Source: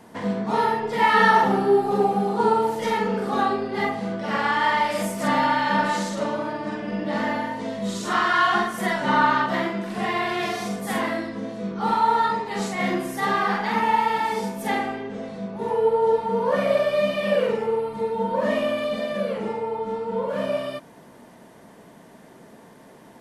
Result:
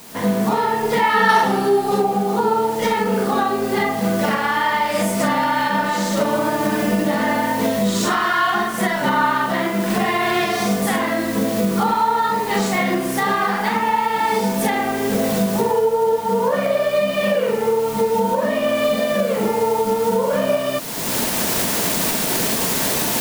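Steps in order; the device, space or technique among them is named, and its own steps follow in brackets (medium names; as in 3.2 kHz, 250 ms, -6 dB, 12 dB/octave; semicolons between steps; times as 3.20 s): 1.29–2.02 s: treble shelf 2.9 kHz +11.5 dB; cheap recorder with automatic gain (white noise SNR 21 dB; recorder AGC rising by 29 dB/s); trim +1 dB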